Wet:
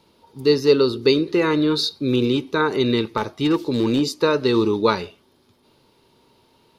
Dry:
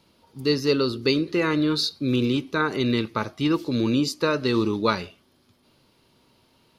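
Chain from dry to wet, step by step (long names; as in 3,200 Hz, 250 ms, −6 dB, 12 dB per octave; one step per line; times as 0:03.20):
hollow resonant body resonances 420/890/3,700 Hz, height 7 dB, ringing for 20 ms
0:03.17–0:04.20: gain into a clipping stage and back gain 14 dB
level +1 dB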